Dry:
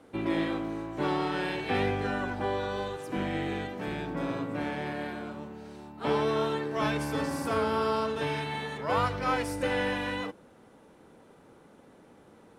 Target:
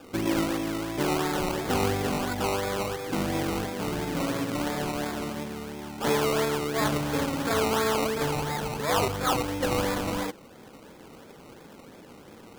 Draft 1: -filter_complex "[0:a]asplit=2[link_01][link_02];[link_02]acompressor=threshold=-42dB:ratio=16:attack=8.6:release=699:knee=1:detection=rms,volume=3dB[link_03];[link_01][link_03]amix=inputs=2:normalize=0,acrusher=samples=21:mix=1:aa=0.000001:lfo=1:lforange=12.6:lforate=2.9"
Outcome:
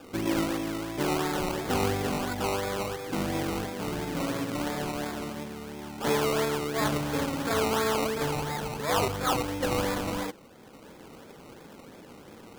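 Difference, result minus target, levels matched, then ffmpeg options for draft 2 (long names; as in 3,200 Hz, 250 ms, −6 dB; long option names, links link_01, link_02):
downward compressor: peak gain reduction +7 dB
-filter_complex "[0:a]asplit=2[link_01][link_02];[link_02]acompressor=threshold=-34.5dB:ratio=16:attack=8.6:release=699:knee=1:detection=rms,volume=3dB[link_03];[link_01][link_03]amix=inputs=2:normalize=0,acrusher=samples=21:mix=1:aa=0.000001:lfo=1:lforange=12.6:lforate=2.9"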